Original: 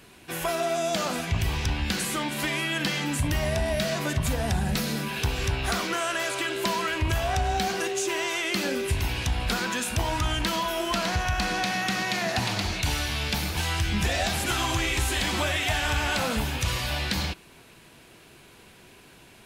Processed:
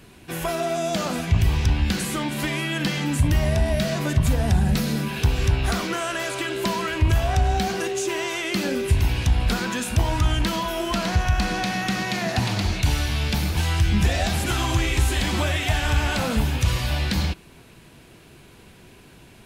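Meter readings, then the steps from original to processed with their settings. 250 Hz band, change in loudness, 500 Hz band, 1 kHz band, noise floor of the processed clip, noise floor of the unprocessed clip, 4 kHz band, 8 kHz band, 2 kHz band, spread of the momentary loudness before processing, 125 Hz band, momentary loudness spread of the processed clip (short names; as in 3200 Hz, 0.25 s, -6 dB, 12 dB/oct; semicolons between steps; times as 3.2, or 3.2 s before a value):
+5.5 dB, +3.5 dB, +2.5 dB, +1.0 dB, -49 dBFS, -52 dBFS, 0.0 dB, 0.0 dB, 0.0 dB, 3 LU, +7.5 dB, 5 LU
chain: low shelf 310 Hz +8.5 dB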